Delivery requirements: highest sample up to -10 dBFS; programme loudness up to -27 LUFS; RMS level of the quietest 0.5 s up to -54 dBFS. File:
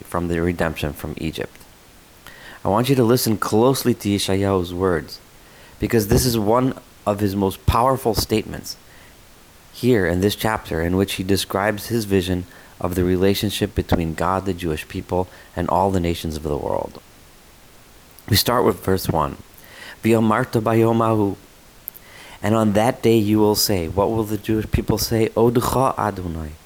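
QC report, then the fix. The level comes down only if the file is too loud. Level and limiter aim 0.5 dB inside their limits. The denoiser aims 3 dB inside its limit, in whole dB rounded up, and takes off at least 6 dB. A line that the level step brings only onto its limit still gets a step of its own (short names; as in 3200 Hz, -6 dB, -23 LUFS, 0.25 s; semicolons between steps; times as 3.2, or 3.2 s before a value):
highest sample -4.5 dBFS: fail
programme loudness -20.0 LUFS: fail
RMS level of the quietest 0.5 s -47 dBFS: fail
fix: gain -7.5 dB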